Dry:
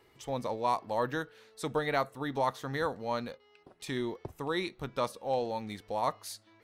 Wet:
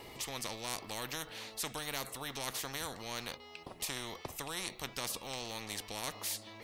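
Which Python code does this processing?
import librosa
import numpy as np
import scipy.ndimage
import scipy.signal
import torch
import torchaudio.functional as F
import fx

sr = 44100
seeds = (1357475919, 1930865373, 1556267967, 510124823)

y = fx.peak_eq(x, sr, hz=1500.0, db=-12.5, octaves=0.51)
y = fx.spectral_comp(y, sr, ratio=4.0)
y = y * 10.0 ** (-1.0 / 20.0)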